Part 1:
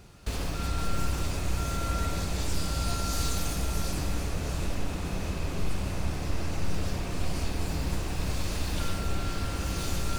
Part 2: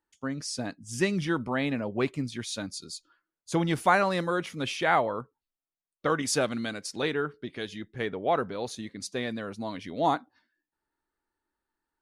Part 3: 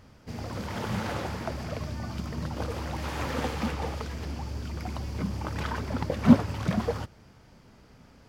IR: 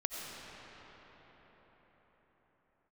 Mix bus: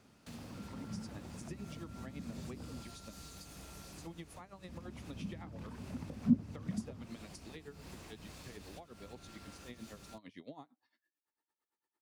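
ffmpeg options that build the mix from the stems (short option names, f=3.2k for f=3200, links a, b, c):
-filter_complex "[0:a]dynaudnorm=f=350:g=9:m=4.5dB,volume=-12.5dB[a];[1:a]bandreject=f=1.5k:w=6,aeval=exprs='val(0)*pow(10,-19*(0.5-0.5*cos(2*PI*8.9*n/s))/20)':c=same,adelay=500,volume=0dB[b];[2:a]equalizer=f=230:w=1.2:g=7,volume=-12.5dB,asplit=3[c][d][e];[c]atrim=end=2.83,asetpts=PTS-STARTPTS,afade=t=out:st=2.826:d=0.004:c=hsin[f];[d]atrim=start=2.83:end=4.68,asetpts=PTS-STARTPTS,volume=0[g];[e]atrim=start=4.68,asetpts=PTS-STARTPTS,afade=t=in:d=0.004:c=hsin[h];[f][g][h]concat=n=3:v=0:a=1[i];[a][b]amix=inputs=2:normalize=0,lowshelf=f=300:g=-9.5,acompressor=threshold=-36dB:ratio=6,volume=0dB[j];[i][j]amix=inputs=2:normalize=0,highpass=f=130:p=1,acrossover=split=270[k][l];[l]acompressor=threshold=-52dB:ratio=6[m];[k][m]amix=inputs=2:normalize=0"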